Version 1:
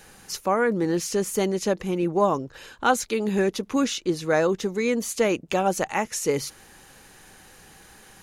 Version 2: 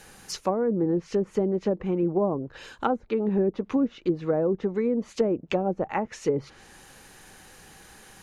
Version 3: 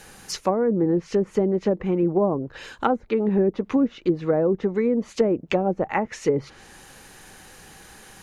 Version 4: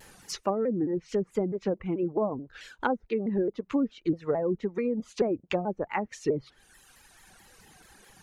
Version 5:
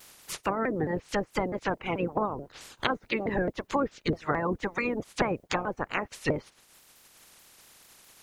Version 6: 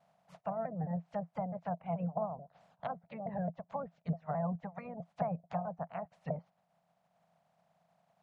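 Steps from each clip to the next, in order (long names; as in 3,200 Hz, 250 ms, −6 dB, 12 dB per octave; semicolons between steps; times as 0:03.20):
treble cut that deepens with the level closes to 520 Hz, closed at −19 dBFS
dynamic equaliser 2,000 Hz, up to +4 dB, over −52 dBFS, Q 3.5; level +3.5 dB
reverb reduction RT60 1.8 s; pitch modulation by a square or saw wave saw down 4.6 Hz, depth 160 cents; level −5.5 dB
ceiling on every frequency bin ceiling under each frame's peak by 27 dB
pair of resonant band-passes 340 Hz, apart 2 octaves; level +1.5 dB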